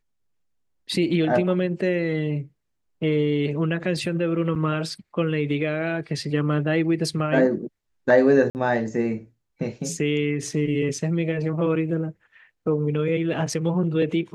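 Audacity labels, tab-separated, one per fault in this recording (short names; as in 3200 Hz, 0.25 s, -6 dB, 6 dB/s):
4.550000	4.560000	gap 7.6 ms
8.500000	8.550000	gap 49 ms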